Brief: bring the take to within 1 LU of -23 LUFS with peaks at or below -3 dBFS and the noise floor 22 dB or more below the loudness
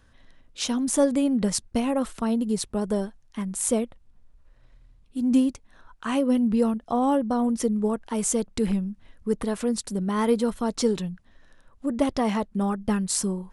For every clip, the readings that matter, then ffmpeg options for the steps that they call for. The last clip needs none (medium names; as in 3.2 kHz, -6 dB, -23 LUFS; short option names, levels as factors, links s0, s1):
loudness -25.5 LUFS; peak level -7.5 dBFS; loudness target -23.0 LUFS
-> -af "volume=1.33"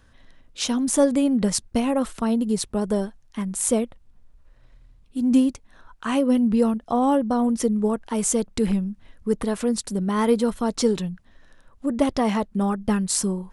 loudness -23.0 LUFS; peak level -5.0 dBFS; noise floor -56 dBFS